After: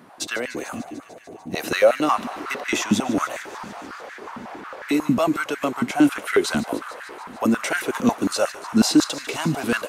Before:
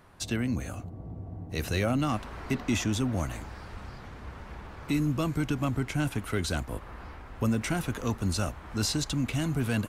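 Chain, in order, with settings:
feedback echo with a high-pass in the loop 148 ms, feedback 77%, high-pass 960 Hz, level −14.5 dB
high-pass on a step sequencer 11 Hz 220–1,700 Hz
level +6.5 dB

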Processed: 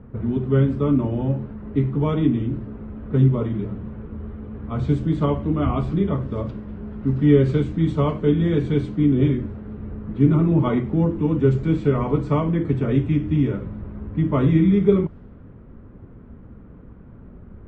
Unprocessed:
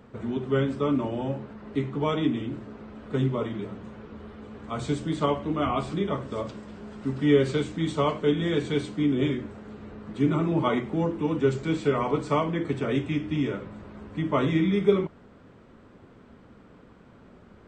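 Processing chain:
parametric band 710 Hz −2 dB
low-pass that shuts in the quiet parts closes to 2,100 Hz, open at −23 dBFS
RIAA equalisation playback

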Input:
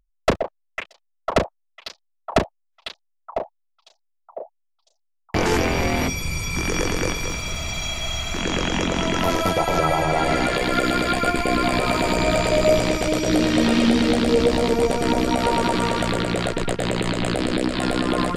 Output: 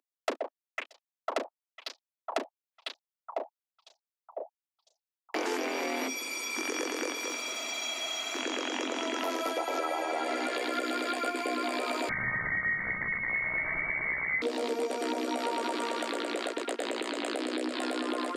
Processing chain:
Butterworth high-pass 250 Hz 72 dB per octave
downward compressor 3 to 1, threshold −25 dBFS, peak gain reduction 9.5 dB
0:12.09–0:14.42: voice inversion scrambler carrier 2,500 Hz
level −5 dB

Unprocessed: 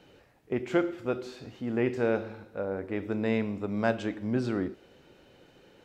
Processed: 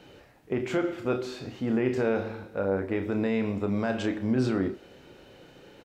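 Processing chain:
brickwall limiter −22.5 dBFS, peak gain reduction 10.5 dB
double-tracking delay 31 ms −8 dB
level +5 dB

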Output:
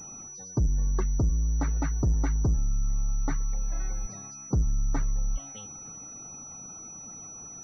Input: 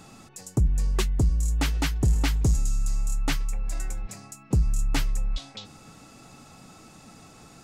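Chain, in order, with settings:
hearing-aid frequency compression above 2,300 Hz 1.5 to 1
treble cut that deepens with the level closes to 1,700 Hz, closed at −22.5 dBFS
leveller curve on the samples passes 1
spectral peaks only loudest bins 64
switching amplifier with a slow clock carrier 5,900 Hz
level −4 dB

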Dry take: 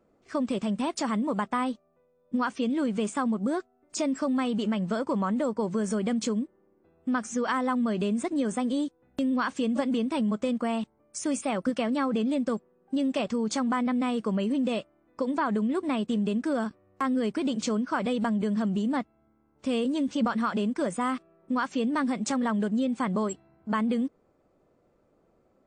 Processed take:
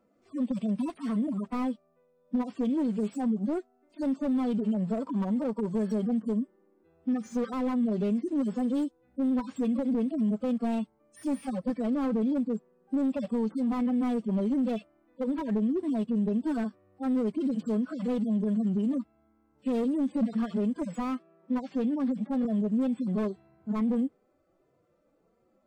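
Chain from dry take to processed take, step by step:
harmonic-percussive split with one part muted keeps harmonic
0:20.85–0:22.45: band-pass filter 120–7,300 Hz
slew-rate limiting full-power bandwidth 21 Hz

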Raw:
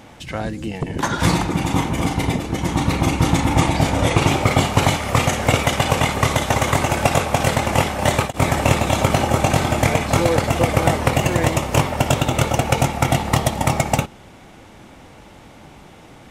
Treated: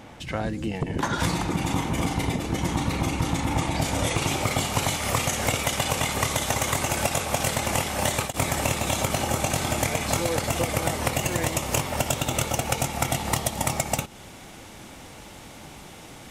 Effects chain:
high-shelf EQ 3,800 Hz −2.5 dB, from 0:01.13 +3.5 dB, from 0:03.82 +11.5 dB
downward compressor, threshold −20 dBFS, peak gain reduction 11 dB
level −1.5 dB

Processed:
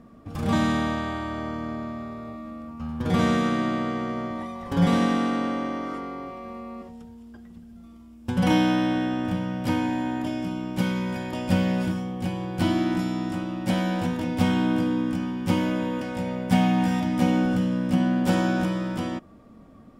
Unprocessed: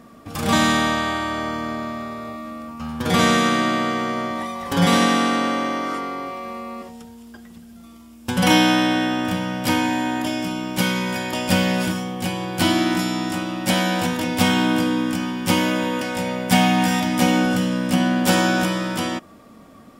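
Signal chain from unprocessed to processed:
spectral tilt −2.5 dB per octave
level −8 dB

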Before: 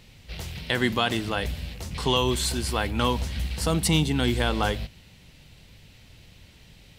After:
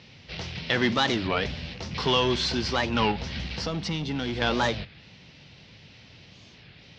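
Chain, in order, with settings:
high-pass filter 110 Hz 12 dB per octave
in parallel at −4.5 dB: wave folding −24 dBFS
0:03.12–0:04.42: on the sum: downward compressor 6 to 1, threshold −26 dBFS, peak gain reduction 9 dB
elliptic low-pass filter 5,600 Hz, stop band 60 dB
wow of a warped record 33 1/3 rpm, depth 250 cents

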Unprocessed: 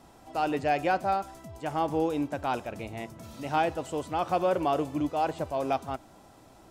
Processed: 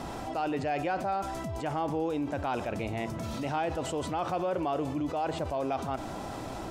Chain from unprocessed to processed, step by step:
high-shelf EQ 8,400 Hz −10.5 dB
envelope flattener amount 70%
level −6 dB

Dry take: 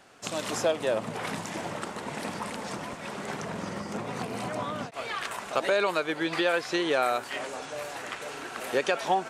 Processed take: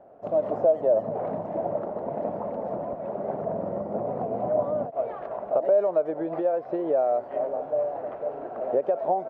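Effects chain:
downward compressor 6 to 1, threshold −27 dBFS, peak gain reduction 7.5 dB
low-pass with resonance 630 Hz, resonance Q 4.9
far-end echo of a speakerphone 90 ms, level −29 dB

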